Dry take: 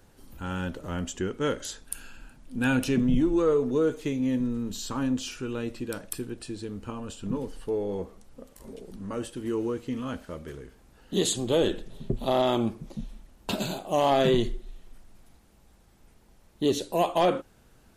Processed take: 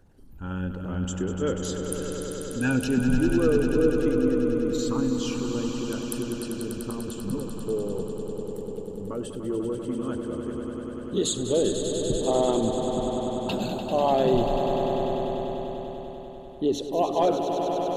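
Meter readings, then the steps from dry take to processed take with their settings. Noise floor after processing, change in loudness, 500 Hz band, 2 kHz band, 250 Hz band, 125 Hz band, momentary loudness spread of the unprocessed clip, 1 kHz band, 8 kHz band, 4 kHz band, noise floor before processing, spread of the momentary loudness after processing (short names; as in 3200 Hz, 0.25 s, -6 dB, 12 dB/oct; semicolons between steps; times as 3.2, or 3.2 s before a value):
-38 dBFS, +1.5 dB, +3.0 dB, 0.0 dB, +3.0 dB, +2.5 dB, 17 LU, +2.0 dB, +2.5 dB, -0.5 dB, -59 dBFS, 11 LU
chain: formant sharpening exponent 1.5; swelling echo 98 ms, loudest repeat 5, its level -9.5 dB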